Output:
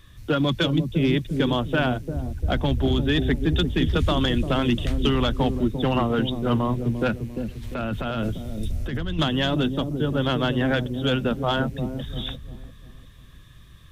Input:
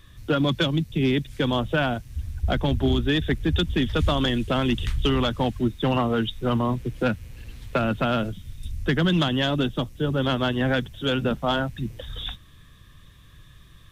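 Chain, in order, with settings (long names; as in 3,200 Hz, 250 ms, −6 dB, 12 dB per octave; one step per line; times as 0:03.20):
0:07.63–0:09.19: compressor whose output falls as the input rises −27 dBFS, ratio −1
delay with a low-pass on its return 347 ms, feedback 36%, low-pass 410 Hz, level −4 dB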